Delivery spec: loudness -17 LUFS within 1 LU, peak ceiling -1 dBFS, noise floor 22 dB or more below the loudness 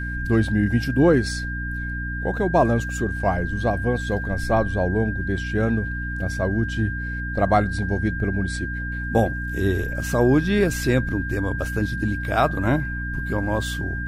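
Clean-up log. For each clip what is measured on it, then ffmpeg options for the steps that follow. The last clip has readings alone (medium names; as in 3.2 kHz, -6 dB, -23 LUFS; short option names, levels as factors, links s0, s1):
hum 60 Hz; highest harmonic 300 Hz; hum level -27 dBFS; steady tone 1.6 kHz; tone level -30 dBFS; loudness -23.0 LUFS; peak level -5.5 dBFS; loudness target -17.0 LUFS
-> -af "bandreject=f=60:t=h:w=6,bandreject=f=120:t=h:w=6,bandreject=f=180:t=h:w=6,bandreject=f=240:t=h:w=6,bandreject=f=300:t=h:w=6"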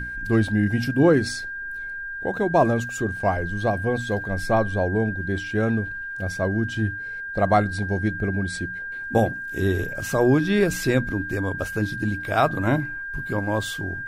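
hum not found; steady tone 1.6 kHz; tone level -30 dBFS
-> -af "bandreject=f=1600:w=30"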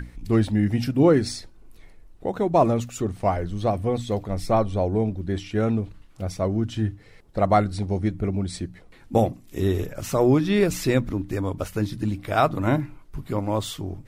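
steady tone not found; loudness -24.0 LUFS; peak level -6.5 dBFS; loudness target -17.0 LUFS
-> -af "volume=2.24,alimiter=limit=0.891:level=0:latency=1"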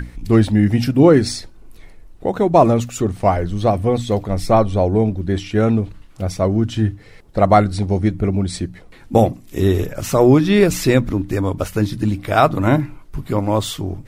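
loudness -17.5 LUFS; peak level -1.0 dBFS; noise floor -43 dBFS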